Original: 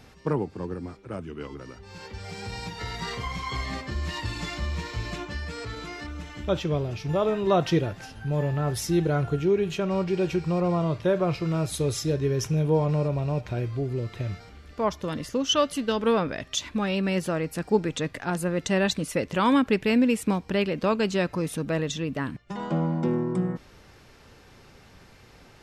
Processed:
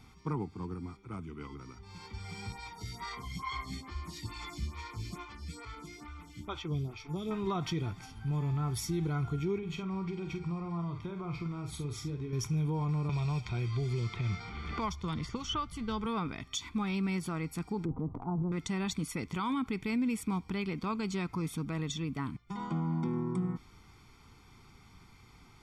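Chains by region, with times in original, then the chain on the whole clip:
0:02.52–0:07.31: high-shelf EQ 9,400 Hz +11.5 dB + phaser with staggered stages 2.3 Hz
0:09.58–0:12.33: low-pass filter 3,500 Hz 6 dB per octave + downward compressor 4 to 1, threshold −28 dBFS + double-tracking delay 47 ms −8 dB
0:13.09–0:16.06: low-pass that shuts in the quiet parts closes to 2,700 Hz, open at −19.5 dBFS + parametric band 270 Hz −13 dB 0.2 octaves + multiband upward and downward compressor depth 100%
0:17.85–0:18.52: Butterworth low-pass 930 Hz + transient designer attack +1 dB, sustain +11 dB
whole clip: comb filter 0.9 ms, depth 85%; brickwall limiter −16.5 dBFS; level −8.5 dB

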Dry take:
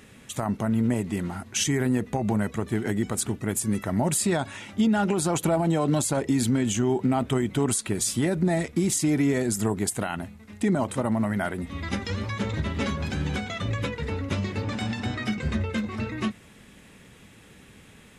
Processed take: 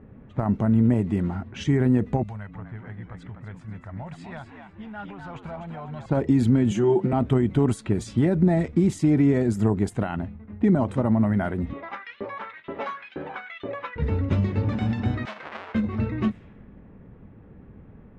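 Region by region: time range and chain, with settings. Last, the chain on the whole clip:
0:02.23–0:06.06: guitar amp tone stack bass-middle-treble 10-0-10 + echo with shifted repeats 249 ms, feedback 35%, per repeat +70 Hz, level −6 dB
0:06.71–0:07.13: high-pass filter 170 Hz + comb filter 5.7 ms, depth 86%
0:11.73–0:13.96: high-shelf EQ 3,600 Hz −6 dB + auto-filter high-pass saw up 2.1 Hz 370–3,700 Hz
0:15.25–0:15.75: each half-wave held at its own peak + high-pass filter 1,100 Hz
whole clip: low-pass filter 2,500 Hz 6 dB per octave; low-pass that shuts in the quiet parts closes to 1,000 Hz, open at −24 dBFS; spectral tilt −2 dB per octave

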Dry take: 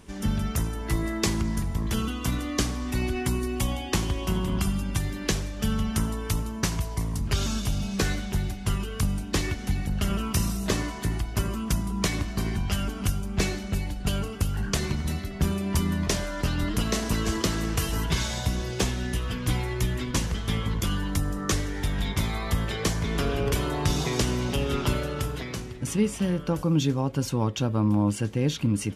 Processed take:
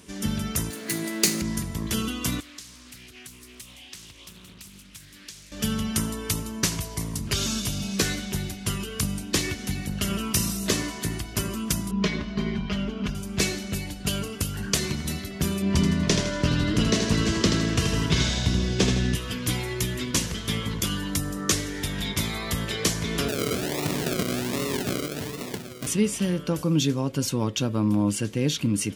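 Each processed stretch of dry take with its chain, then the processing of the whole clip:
0:00.70–0:01.42: lower of the sound and its delayed copy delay 0.46 ms + high-pass filter 160 Hz 24 dB per octave + high-shelf EQ 4,700 Hz +4.5 dB
0:02.40–0:05.52: guitar amp tone stack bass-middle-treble 5-5-5 + downward compressor 4 to 1, threshold −43 dBFS + highs frequency-modulated by the lows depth 0.59 ms
0:11.91–0:13.15: high-frequency loss of the air 240 metres + comb filter 4.8 ms, depth 70%
0:15.62–0:19.15: low-pass filter 5,600 Hz + low-shelf EQ 410 Hz +6 dB + repeating echo 80 ms, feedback 44%, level −6 dB
0:23.28–0:25.87: high-pass filter 140 Hz + sample-and-hold swept by an LFO 39×, swing 60% 1.3 Hz
whole clip: high-pass filter 290 Hz 6 dB per octave; parametric band 950 Hz −8 dB 2.5 octaves; notch filter 810 Hz, Q 12; level +7 dB

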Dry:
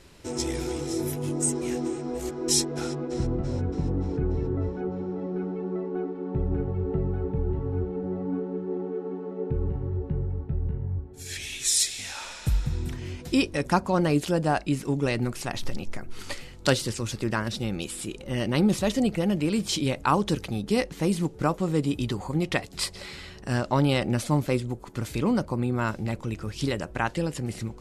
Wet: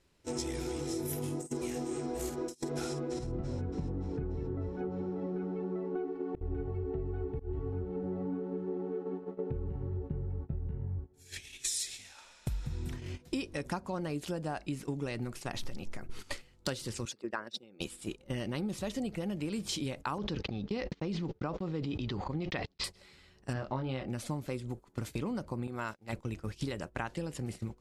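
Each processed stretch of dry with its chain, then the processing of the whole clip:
0:01.05–0:03.36: high-shelf EQ 8,200 Hz +7 dB + compressor whose output falls as the input rises −29 dBFS, ratio −0.5 + double-tracking delay 50 ms −9 dB
0:05.95–0:07.73: comb filter 2.7 ms, depth 61% + volume swells 200 ms
0:17.05–0:17.80: spectral envelope exaggerated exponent 1.5 + high-pass filter 410 Hz + upward compression, threshold −34 dBFS
0:20.18–0:22.84: inverse Chebyshev low-pass filter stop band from 11,000 Hz, stop band 50 dB + noise gate −36 dBFS, range −53 dB + level that may fall only so fast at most 34 dB per second
0:23.53–0:24.08: high-frequency loss of the air 180 metres + double-tracking delay 23 ms −4.5 dB
0:25.67–0:26.13: noise gate −33 dBFS, range −14 dB + low-shelf EQ 350 Hz −10 dB
whole clip: noise gate −33 dBFS, range −18 dB; downward compressor 6 to 1, threshold −33 dBFS

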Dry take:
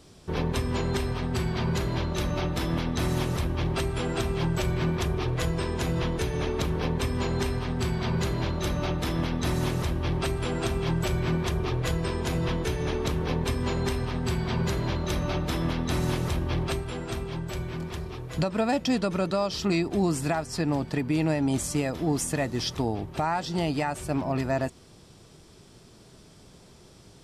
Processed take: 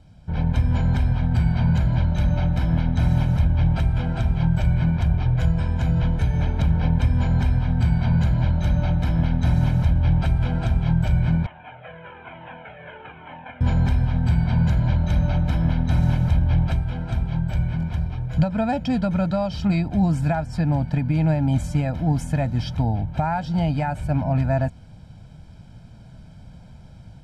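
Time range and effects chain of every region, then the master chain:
0:11.46–0:13.61: variable-slope delta modulation 16 kbit/s + high-pass filter 500 Hz + flanger whose copies keep moving one way falling 1.1 Hz
whole clip: bass and treble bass +9 dB, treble −13 dB; comb filter 1.3 ms, depth 80%; automatic gain control gain up to 5.5 dB; level −6 dB

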